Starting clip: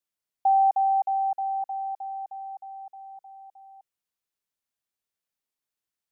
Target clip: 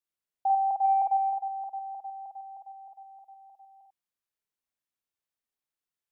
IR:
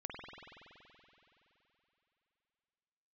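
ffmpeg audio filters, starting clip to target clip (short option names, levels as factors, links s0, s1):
-filter_complex "[0:a]asplit=3[s0][s1][s2];[s0]afade=t=out:st=0.83:d=0.02[s3];[s1]acontrast=31,afade=t=in:st=0.83:d=0.02,afade=t=out:st=1.29:d=0.02[s4];[s2]afade=t=in:st=1.29:d=0.02[s5];[s3][s4][s5]amix=inputs=3:normalize=0[s6];[1:a]atrim=start_sample=2205,afade=t=out:st=0.15:d=0.01,atrim=end_sample=7056[s7];[s6][s7]afir=irnorm=-1:irlink=0"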